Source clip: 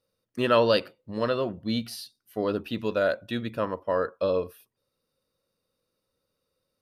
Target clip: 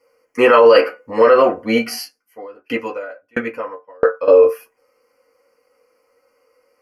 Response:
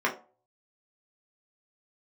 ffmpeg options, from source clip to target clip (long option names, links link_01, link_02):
-filter_complex "[0:a]asuperstop=centerf=3700:order=4:qfactor=1.4,equalizer=frequency=170:width=1.1:gain=-6[link_01];[1:a]atrim=start_sample=2205,asetrate=88200,aresample=44100[link_02];[link_01][link_02]afir=irnorm=-1:irlink=0,alimiter=level_in=16.5dB:limit=-1dB:release=50:level=0:latency=1,asettb=1/sr,asplit=3[link_03][link_04][link_05];[link_03]atrim=end=2.034[link_06];[link_04]atrim=start=2.03:end=4.28,asetpts=PTS-STARTPTS,afade=type=in:duration=0.004:curve=qsin,afade=type=out:start_time=2.246:duration=0.004:curve=qsin,aeval=exprs='val(0)*pow(10,-37*if(lt(mod(1.5*n/s,1),2*abs(1.5)/1000),1-mod(1.5*n/s,1)/(2*abs(1.5)/1000),(mod(1.5*n/s,1)-2*abs(1.5)/1000)/(1-2*abs(1.5)/1000))/20)':channel_layout=same[link_07];[link_05]atrim=start=4.276[link_08];[link_06][link_07]acrossfade=duration=0.004:curve1=hsin:curve2=qsin[link_09];[link_09][link_08]acrossfade=duration=0.004:curve1=qsin:curve2=hsin,volume=-1dB"